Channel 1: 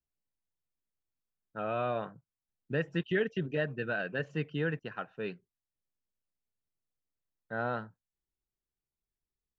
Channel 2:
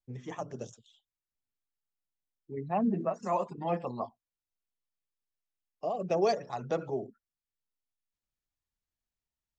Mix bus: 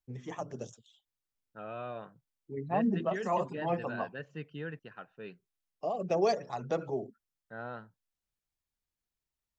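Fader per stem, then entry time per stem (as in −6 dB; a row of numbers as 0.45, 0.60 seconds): −8.0, −0.5 decibels; 0.00, 0.00 seconds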